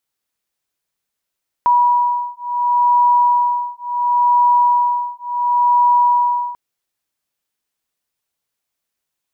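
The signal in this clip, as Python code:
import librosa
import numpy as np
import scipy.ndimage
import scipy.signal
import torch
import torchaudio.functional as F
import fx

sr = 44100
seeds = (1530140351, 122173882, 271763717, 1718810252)

y = fx.two_tone_beats(sr, length_s=4.89, hz=970.0, beat_hz=0.71, level_db=-15.0)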